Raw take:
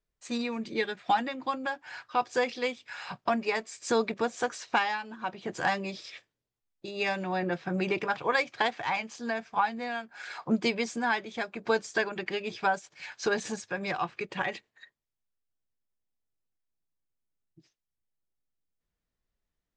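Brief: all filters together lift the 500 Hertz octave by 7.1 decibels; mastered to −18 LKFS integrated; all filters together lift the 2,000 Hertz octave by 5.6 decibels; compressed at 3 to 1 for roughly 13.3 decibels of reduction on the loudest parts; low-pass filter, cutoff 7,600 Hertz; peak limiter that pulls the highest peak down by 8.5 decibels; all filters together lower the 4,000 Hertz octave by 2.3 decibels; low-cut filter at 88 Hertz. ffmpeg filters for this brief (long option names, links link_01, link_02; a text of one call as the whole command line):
ffmpeg -i in.wav -af "highpass=88,lowpass=7600,equalizer=frequency=500:width_type=o:gain=8,equalizer=frequency=2000:width_type=o:gain=8,equalizer=frequency=4000:width_type=o:gain=-6.5,acompressor=threshold=-34dB:ratio=3,volume=20dB,alimiter=limit=-6dB:level=0:latency=1" out.wav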